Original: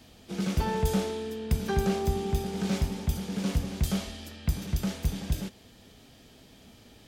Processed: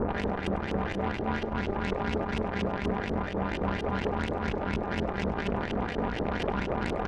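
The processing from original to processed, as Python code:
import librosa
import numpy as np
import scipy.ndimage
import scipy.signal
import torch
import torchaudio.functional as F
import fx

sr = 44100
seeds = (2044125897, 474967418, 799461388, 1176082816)

y = fx.bin_compress(x, sr, power=0.2)
y = scipy.signal.sosfilt(scipy.signal.butter(2, 65.0, 'highpass', fs=sr, output='sos'), y)
y = fx.peak_eq(y, sr, hz=11000.0, db=9.0, octaves=0.95)
y = y + 0.88 * np.pad(y, (int(3.8 * sr / 1000.0), 0))[:len(y)]
y = fx.level_steps(y, sr, step_db=15)
y = fx.harmonic_tremolo(y, sr, hz=3.8, depth_pct=70, crossover_hz=860.0)
y = fx.sample_hold(y, sr, seeds[0], rate_hz=1200.0, jitter_pct=0)
y = fx.filter_lfo_lowpass(y, sr, shape='saw_up', hz=4.2, low_hz=360.0, high_hz=3100.0, q=3.7)
y = fx.cheby_harmonics(y, sr, harmonics=(6,), levels_db=(-14,), full_scale_db=-17.5)
y = y + 10.0 ** (-19.0 / 20.0) * np.pad(y, (int(99 * sr / 1000.0), 0))[:len(y)]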